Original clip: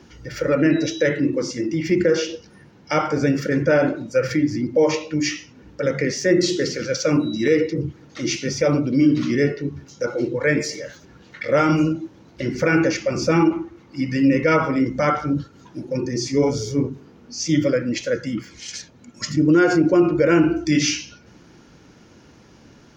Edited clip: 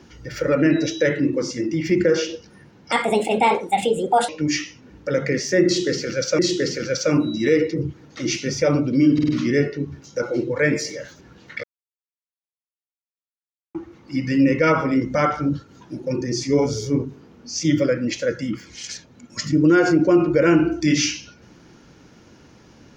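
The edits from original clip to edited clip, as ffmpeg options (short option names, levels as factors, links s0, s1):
-filter_complex "[0:a]asplit=9[s0][s1][s2][s3][s4][s5][s6][s7][s8];[s0]atrim=end=2.924[s9];[s1]atrim=start=2.92:end=5.01,asetpts=PTS-STARTPTS,asetrate=67473,aresample=44100,atrim=end_sample=60241,asetpts=PTS-STARTPTS[s10];[s2]atrim=start=5.006:end=7.112[s11];[s3]atrim=start=6.378:end=9.182[s12];[s4]atrim=start=9.128:end=9.182[s13];[s5]atrim=start=9.128:end=9.182[s14];[s6]atrim=start=9.128:end=11.48,asetpts=PTS-STARTPTS,afade=t=out:st=2.348:d=0.004:c=hsin[s15];[s7]atrim=start=11.48:end=13.59,asetpts=PTS-STARTPTS,volume=0[s16];[s8]atrim=start=13.59,asetpts=PTS-STARTPTS,afade=t=in:d=0.004:c=hsin[s17];[s9][s10]acrossfade=d=0.004:c1=hsin:c2=hsin[s18];[s18][s11]acrossfade=d=0.004:c1=hsin:c2=hsin[s19];[s19][s12]acrossfade=d=0.004:c1=hsin:c2=hsin[s20];[s20][s13]acrossfade=d=0.004:c1=hsin:c2=hsin[s21];[s21][s14]acrossfade=d=0.004:c1=hsin:c2=hsin[s22];[s15][s16][s17]concat=n=3:v=0:a=1[s23];[s22][s23]acrossfade=d=0.004:c1=hsin:c2=hsin"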